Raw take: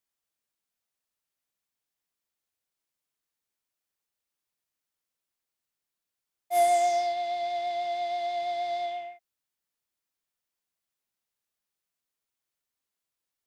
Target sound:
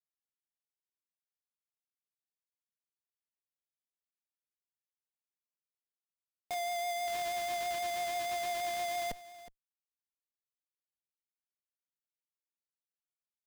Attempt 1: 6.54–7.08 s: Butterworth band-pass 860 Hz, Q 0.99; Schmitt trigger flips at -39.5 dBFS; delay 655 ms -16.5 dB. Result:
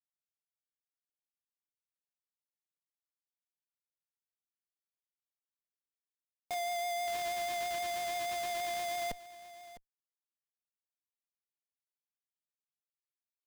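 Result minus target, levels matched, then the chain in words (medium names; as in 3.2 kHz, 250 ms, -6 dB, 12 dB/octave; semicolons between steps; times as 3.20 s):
echo 289 ms late
6.54–7.08 s: Butterworth band-pass 860 Hz, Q 0.99; Schmitt trigger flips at -39.5 dBFS; delay 366 ms -16.5 dB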